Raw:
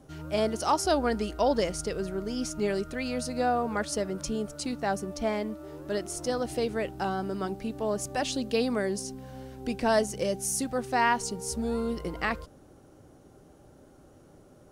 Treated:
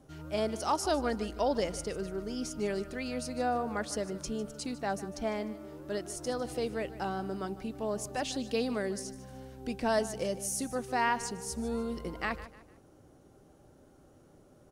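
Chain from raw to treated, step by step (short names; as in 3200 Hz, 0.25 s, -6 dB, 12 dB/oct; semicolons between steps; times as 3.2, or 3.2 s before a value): feedback echo 0.151 s, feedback 36%, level -16 dB; gain -4.5 dB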